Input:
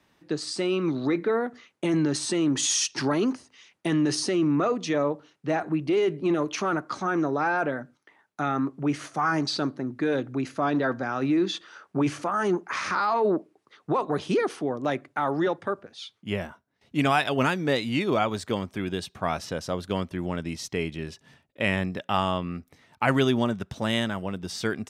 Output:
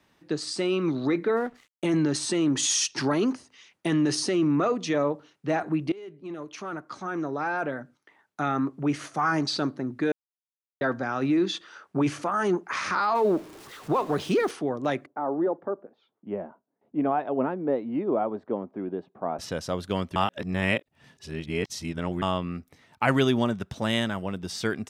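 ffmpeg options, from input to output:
ffmpeg -i in.wav -filter_complex "[0:a]asplit=3[link_01][link_02][link_03];[link_01]afade=type=out:start_time=1.35:duration=0.02[link_04];[link_02]aeval=exprs='sgn(val(0))*max(abs(val(0))-0.00251,0)':channel_layout=same,afade=type=in:start_time=1.35:duration=0.02,afade=type=out:start_time=1.85:duration=0.02[link_05];[link_03]afade=type=in:start_time=1.85:duration=0.02[link_06];[link_04][link_05][link_06]amix=inputs=3:normalize=0,asettb=1/sr,asplit=3[link_07][link_08][link_09];[link_07]atrim=end=13.154[link_10];[link_08]atrim=start=13.15:end=14.51,asetpts=PTS-STARTPTS,afade=type=in:duration=0.004:curve=qsin,afade=type=out:start_time=1.356:duration=0.004:curve=qsin,aeval=exprs='val(0)+0.5*0.00891*sgn(val(0))':channel_layout=same[link_11];[link_09]atrim=start=14.506[link_12];[link_10][link_11]acrossfade=duration=0.004:curve1=hsin:curve2=qsin[link_13];[link_13][link_12]acrossfade=duration=0.004:curve1=qsin:curve2=hsin,asettb=1/sr,asplit=3[link_14][link_15][link_16];[link_14]atrim=end=15.064[link_17];[link_15]atrim=start=15.06:end=19.39,asetpts=PTS-STARTPTS,afade=type=in:duration=0.004:curve=qsin,afade=type=out:start_time=4.326:duration=0.004:curve=qsin,asuperpass=centerf=440:order=4:qfactor=0.67[link_18];[link_16]atrim=start=19.386[link_19];[link_17][link_18]acrossfade=duration=0.004:curve1=hsin:curve2=qsin[link_20];[link_20][link_19]acrossfade=duration=0.004:curve1=qsin:curve2=hsin,asplit=6[link_21][link_22][link_23][link_24][link_25][link_26];[link_21]atrim=end=5.92,asetpts=PTS-STARTPTS,afade=type=out:start_time=5.916:duration=0.004:curve=hsin:silence=0.0841395[link_27];[link_22]atrim=start=5.92:end=10.12,asetpts=PTS-STARTPTS,afade=type=in:duration=2.52:silence=0.0841395,afade=type=out:start_time=4.196:duration=0.004:curve=hsin[link_28];[link_23]atrim=start=10.12:end=10.81,asetpts=PTS-STARTPTS,volume=0[link_29];[link_24]atrim=start=10.81:end=20.162,asetpts=PTS-STARTPTS,afade=type=in:duration=0.004:curve=hsin[link_30];[link_25]atrim=start=20.158:end=22.222,asetpts=PTS-STARTPTS,areverse[link_31];[link_26]atrim=start=22.218[link_32];[link_27][link_28][link_29][link_30]concat=n=4:v=0:a=1[link_33];[link_33][link_31]acrossfade=duration=0.004:curve1=hsin:curve2=hsin[link_34];[link_34][link_32]acrossfade=duration=0.004:curve1=hsin:curve2=hsin" out.wav

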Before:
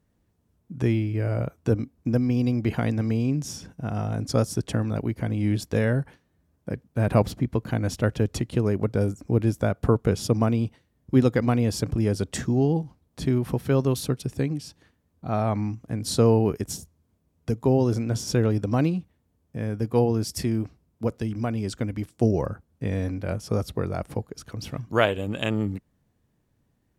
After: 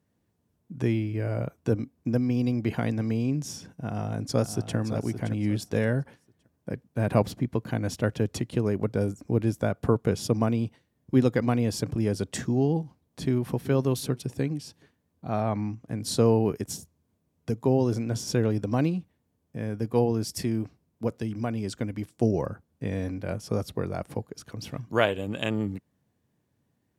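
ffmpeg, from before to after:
ffmpeg -i in.wav -filter_complex "[0:a]asplit=2[link_01][link_02];[link_02]afade=type=in:start_time=3.83:duration=0.01,afade=type=out:start_time=4.76:duration=0.01,aecho=0:1:570|1140|1710:0.316228|0.0790569|0.0197642[link_03];[link_01][link_03]amix=inputs=2:normalize=0,asplit=2[link_04][link_05];[link_05]afade=type=in:start_time=13.23:duration=0.01,afade=type=out:start_time=13.71:duration=0.01,aecho=0:1:380|760|1140:0.133352|0.0533409|0.0213363[link_06];[link_04][link_06]amix=inputs=2:normalize=0,asettb=1/sr,asplit=3[link_07][link_08][link_09];[link_07]atrim=end=15.404[link_10];[link_08]atrim=start=15.4:end=15.89,asetpts=PTS-STARTPTS,afade=type=in:duration=0.004:curve=qsin,afade=type=out:start_time=0.486:duration=0.004:curve=qsin,highshelf=frequency=7700:gain=-8.5[link_11];[link_09]atrim=start=15.886[link_12];[link_10][link_11]acrossfade=duration=0.004:curve1=hsin:curve2=qsin[link_13];[link_13][link_12]acrossfade=duration=0.004:curve1=qsin:curve2=hsin,highpass=95,bandreject=frequency=1300:width=20,volume=-2dB" out.wav

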